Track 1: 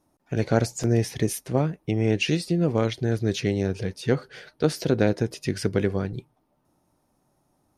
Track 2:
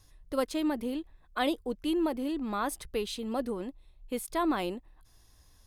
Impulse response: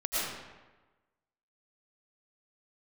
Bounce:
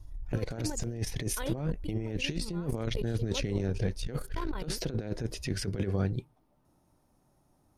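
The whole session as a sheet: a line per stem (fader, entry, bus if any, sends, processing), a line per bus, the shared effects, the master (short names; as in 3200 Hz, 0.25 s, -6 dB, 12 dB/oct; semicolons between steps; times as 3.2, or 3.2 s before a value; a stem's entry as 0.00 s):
-5.5 dB, 0.00 s, no send, dry
-13.0 dB, 0.00 s, no send, tone controls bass +14 dB, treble -1 dB; comb 2.1 ms, depth 76%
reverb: off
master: negative-ratio compressor -31 dBFS, ratio -0.5; low shelf 91 Hz +9.5 dB; core saturation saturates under 150 Hz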